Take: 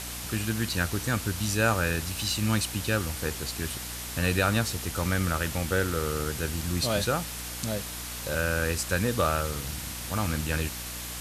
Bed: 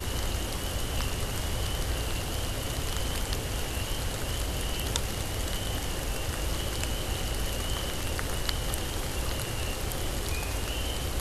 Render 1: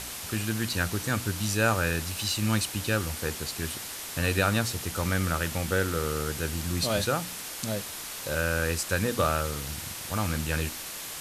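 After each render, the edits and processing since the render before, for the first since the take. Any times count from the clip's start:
hum removal 60 Hz, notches 5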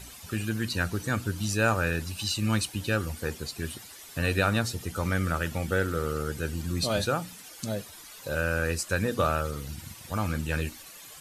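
broadband denoise 13 dB, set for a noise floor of −38 dBFS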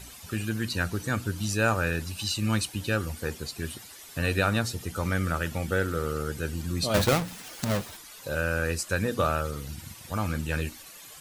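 0:06.94–0:07.97: each half-wave held at its own peak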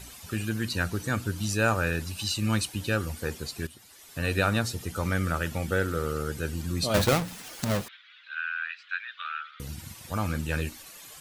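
0:03.67–0:04.41: fade in, from −13 dB
0:07.88–0:09.60: elliptic band-pass filter 1,400–3,600 Hz, stop band 60 dB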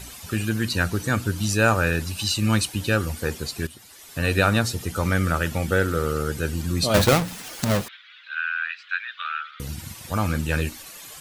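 level +5.5 dB

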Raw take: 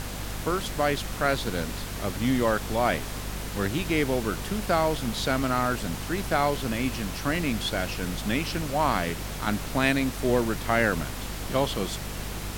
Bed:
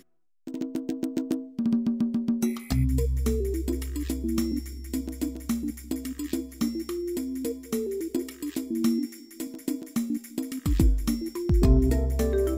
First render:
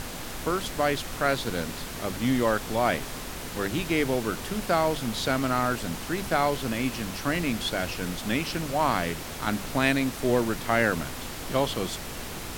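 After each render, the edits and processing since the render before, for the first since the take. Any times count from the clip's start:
mains-hum notches 50/100/150/200 Hz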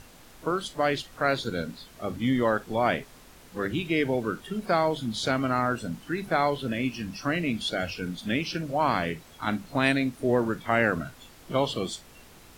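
noise reduction from a noise print 15 dB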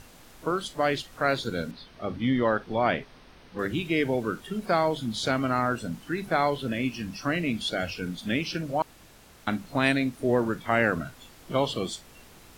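0:01.71–0:03.59: Savitzky-Golay smoothing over 15 samples
0:08.82–0:09.47: fill with room tone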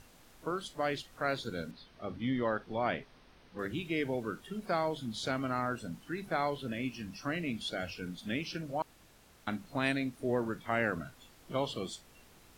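level −8 dB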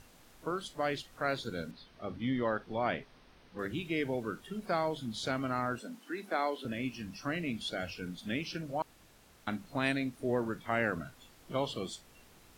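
0:05.80–0:06.65: Butterworth high-pass 210 Hz 48 dB per octave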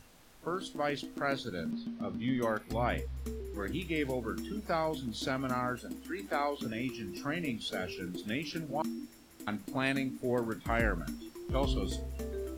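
mix in bed −14 dB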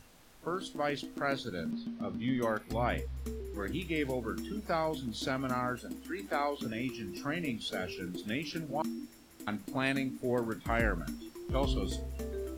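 no processing that can be heard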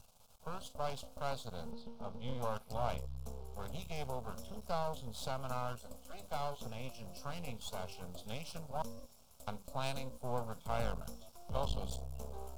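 half-wave rectification
phaser with its sweep stopped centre 770 Hz, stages 4

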